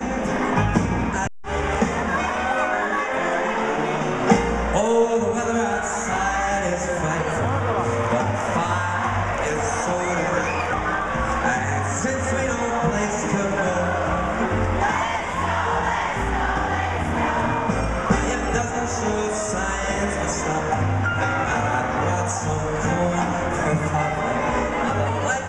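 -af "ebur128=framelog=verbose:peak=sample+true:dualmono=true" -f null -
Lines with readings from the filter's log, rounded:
Integrated loudness:
  I:         -19.3 LUFS
  Threshold: -29.3 LUFS
Loudness range:
  LRA:         1.6 LU
  Threshold: -39.3 LUFS
  LRA low:   -19.8 LUFS
  LRA high:  -18.2 LUFS
Sample peak:
  Peak:       -2.0 dBFS
True peak:
  Peak:       -2.0 dBFS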